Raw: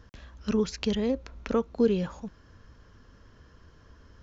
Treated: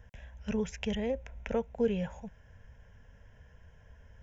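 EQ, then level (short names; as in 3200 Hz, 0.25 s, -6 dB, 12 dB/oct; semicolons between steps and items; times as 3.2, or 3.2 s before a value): fixed phaser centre 1200 Hz, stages 6; 0.0 dB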